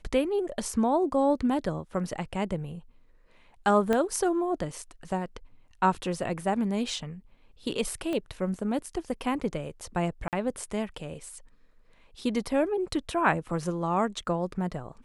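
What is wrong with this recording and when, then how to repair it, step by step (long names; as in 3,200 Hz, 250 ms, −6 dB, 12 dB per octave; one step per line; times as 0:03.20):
0:03.93: click −14 dBFS
0:08.13: click −20 dBFS
0:10.28–0:10.33: drop-out 48 ms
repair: click removal
repair the gap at 0:10.28, 48 ms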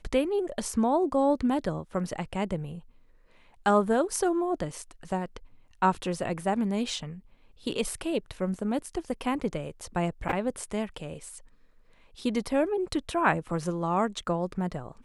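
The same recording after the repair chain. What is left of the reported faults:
0:03.93: click
0:08.13: click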